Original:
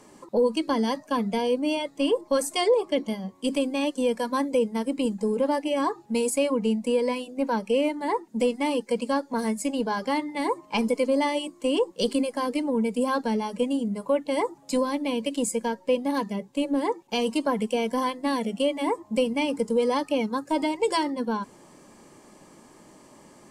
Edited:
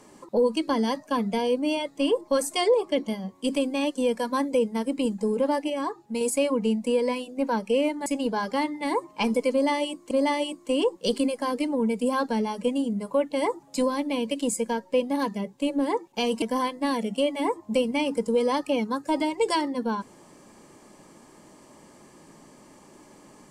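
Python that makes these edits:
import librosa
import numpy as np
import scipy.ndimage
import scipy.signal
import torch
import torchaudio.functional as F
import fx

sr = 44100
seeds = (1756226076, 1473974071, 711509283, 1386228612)

y = fx.edit(x, sr, fx.clip_gain(start_s=5.7, length_s=0.51, db=-4.0),
    fx.cut(start_s=8.06, length_s=1.54),
    fx.repeat(start_s=11.06, length_s=0.59, count=2),
    fx.cut(start_s=17.37, length_s=0.47), tone=tone)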